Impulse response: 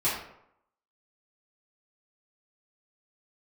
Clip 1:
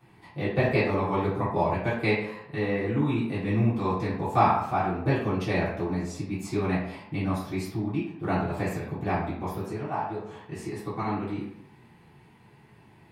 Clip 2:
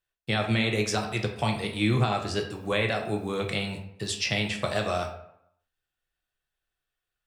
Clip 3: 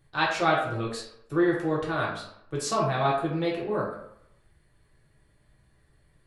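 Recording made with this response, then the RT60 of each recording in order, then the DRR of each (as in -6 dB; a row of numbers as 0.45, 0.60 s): 1; 0.75, 0.75, 0.75 s; -11.5, 1.5, -5.5 dB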